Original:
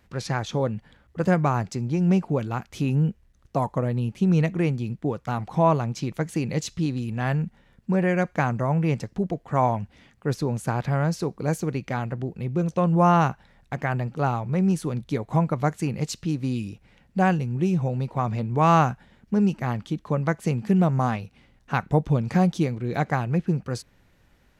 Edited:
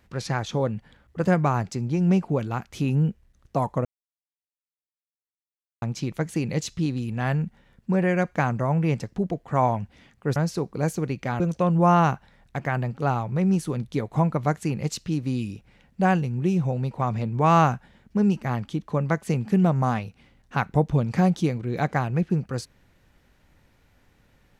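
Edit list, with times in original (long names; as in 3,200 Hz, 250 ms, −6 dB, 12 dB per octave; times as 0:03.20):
0:03.85–0:05.82: silence
0:10.36–0:11.01: remove
0:12.05–0:12.57: remove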